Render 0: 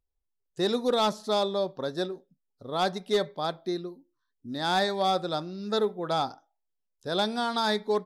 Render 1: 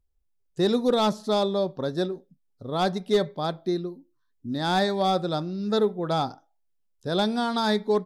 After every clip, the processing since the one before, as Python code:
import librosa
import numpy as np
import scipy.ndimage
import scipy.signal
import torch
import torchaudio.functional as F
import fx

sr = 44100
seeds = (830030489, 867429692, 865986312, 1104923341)

y = fx.low_shelf(x, sr, hz=310.0, db=10.0)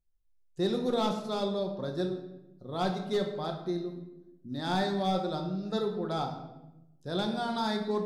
y = fx.room_shoebox(x, sr, seeds[0], volume_m3=370.0, walls='mixed', distance_m=0.91)
y = y * librosa.db_to_amplitude(-8.5)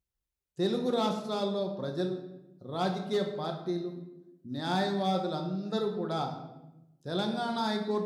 y = scipy.signal.sosfilt(scipy.signal.butter(2, 53.0, 'highpass', fs=sr, output='sos'), x)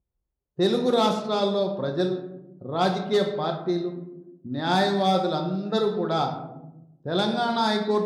y = fx.env_lowpass(x, sr, base_hz=750.0, full_db=-25.0)
y = fx.dynamic_eq(y, sr, hz=190.0, q=0.9, threshold_db=-45.0, ratio=4.0, max_db=-3)
y = y * librosa.db_to_amplitude(8.5)